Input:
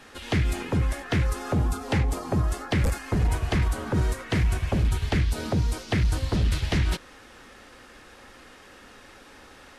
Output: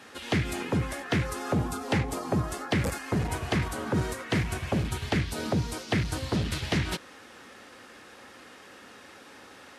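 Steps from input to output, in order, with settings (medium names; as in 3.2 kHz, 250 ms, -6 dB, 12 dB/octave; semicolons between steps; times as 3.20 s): high-pass 120 Hz 12 dB/octave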